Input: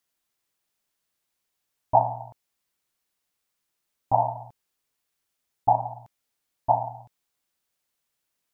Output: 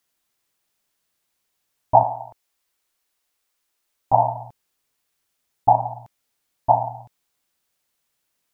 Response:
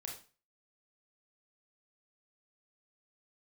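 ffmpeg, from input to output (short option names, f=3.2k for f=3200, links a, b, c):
-filter_complex "[0:a]asettb=1/sr,asplit=3[a][b][c];[a]atrim=end=2.034[d];[b]atrim=start=2.03:end=4.13,asetpts=PTS-STARTPTS,afade=t=in:d=0.004:c=qsin,afade=t=out:st=2.096:d=0.004:c=qsin,equalizer=f=150:w=1.3:g=-13[e];[c]atrim=start=4.126[f];[d][e]acrossfade=d=0.004:c1=hsin:c2=qsin[g];[g][f]acrossfade=d=0.004:c1=qsin:c2=hsin,volume=5dB"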